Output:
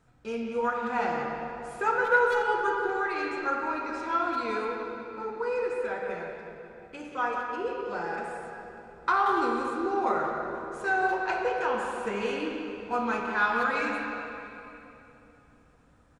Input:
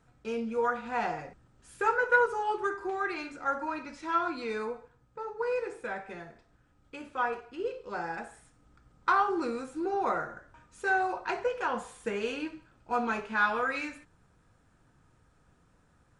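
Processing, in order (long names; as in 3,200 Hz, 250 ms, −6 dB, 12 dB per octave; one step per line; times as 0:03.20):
0:06.99–0:07.56: parametric band 6,400 Hz +8.5 dB 0.39 octaves
far-end echo of a speakerphone 180 ms, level −7 dB
on a send at −1.5 dB: convolution reverb RT60 3.2 s, pre-delay 29 ms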